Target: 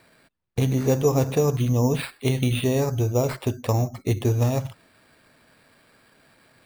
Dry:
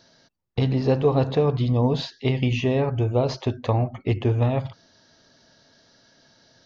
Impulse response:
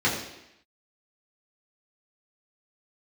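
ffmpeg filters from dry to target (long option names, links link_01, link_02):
-af "equalizer=frequency=780:width_type=o:width=0.77:gain=-2.5,acrusher=samples=7:mix=1:aa=0.000001"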